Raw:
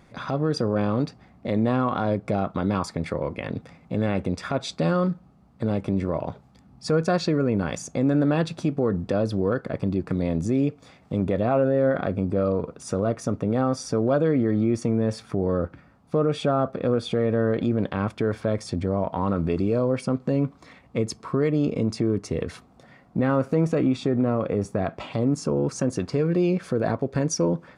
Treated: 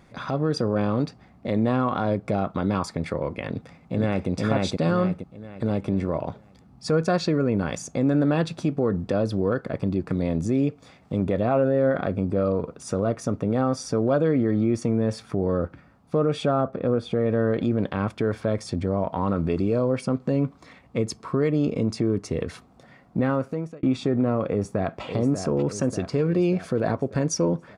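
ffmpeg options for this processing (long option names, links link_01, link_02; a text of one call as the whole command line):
ffmpeg -i in.wav -filter_complex "[0:a]asplit=2[link_01][link_02];[link_02]afade=type=in:start_time=3.49:duration=0.01,afade=type=out:start_time=4.29:duration=0.01,aecho=0:1:470|940|1410|1880|2350:0.944061|0.377624|0.15105|0.0604199|0.024168[link_03];[link_01][link_03]amix=inputs=2:normalize=0,asettb=1/sr,asplit=3[link_04][link_05][link_06];[link_04]atrim=end=16.614[link_07];[link_05]atrim=start=16.61:end=17.26,asetpts=PTS-STARTPTS,afade=type=in:duration=0.004:curve=qsin,afade=type=out:start_time=0.646:duration=0.004:curve=qsin,highshelf=frequency=2500:gain=-9[link_08];[link_06]atrim=start=17.256[link_09];[link_07][link_08]acrossfade=duration=0.004:curve1=hsin:curve2=qsin[link_10];[link_10][link_09]acrossfade=duration=0.004:curve1=qsin:curve2=hsin,asplit=2[link_11][link_12];[link_12]afade=type=in:start_time=24.46:duration=0.01,afade=type=out:start_time=25.03:duration=0.01,aecho=0:1:590|1180|1770|2360|2950|3540|4130|4720:0.398107|0.238864|0.143319|0.0859911|0.0515947|0.0309568|0.0185741|0.0111445[link_13];[link_11][link_13]amix=inputs=2:normalize=0,asplit=2[link_14][link_15];[link_14]atrim=end=23.83,asetpts=PTS-STARTPTS,afade=type=out:start_time=23.21:duration=0.62[link_16];[link_15]atrim=start=23.83,asetpts=PTS-STARTPTS,afade=type=in:duration=0.004:curve=hsin[link_17];[link_16][link_17]concat=n=2:v=0:a=1" out.wav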